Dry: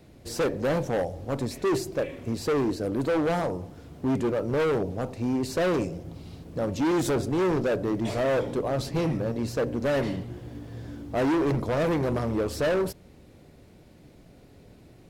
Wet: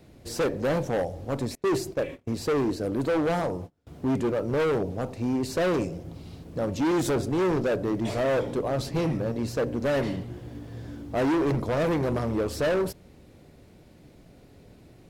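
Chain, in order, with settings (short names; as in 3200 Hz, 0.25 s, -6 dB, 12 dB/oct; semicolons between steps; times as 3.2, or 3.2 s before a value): 1.55–3.87 gate -36 dBFS, range -29 dB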